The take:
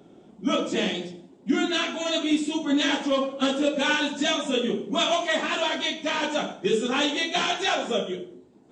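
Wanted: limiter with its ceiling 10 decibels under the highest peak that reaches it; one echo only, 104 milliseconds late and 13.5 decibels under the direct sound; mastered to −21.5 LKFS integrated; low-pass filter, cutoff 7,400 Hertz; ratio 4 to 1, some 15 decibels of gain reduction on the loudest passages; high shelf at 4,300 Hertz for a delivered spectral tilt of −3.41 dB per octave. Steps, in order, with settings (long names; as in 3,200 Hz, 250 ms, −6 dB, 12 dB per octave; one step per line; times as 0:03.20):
low-pass filter 7,400 Hz
high-shelf EQ 4,300 Hz +3.5 dB
downward compressor 4 to 1, threshold −37 dBFS
brickwall limiter −34 dBFS
single-tap delay 104 ms −13.5 dB
level +20.5 dB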